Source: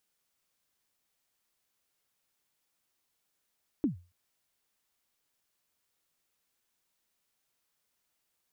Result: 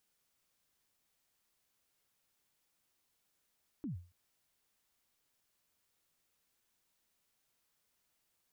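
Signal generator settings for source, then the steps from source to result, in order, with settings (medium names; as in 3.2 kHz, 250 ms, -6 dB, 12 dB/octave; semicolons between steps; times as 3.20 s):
kick drum length 0.28 s, from 330 Hz, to 88 Hz, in 122 ms, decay 0.32 s, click off, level -21 dB
bass shelf 220 Hz +3.5 dB; peak limiter -37 dBFS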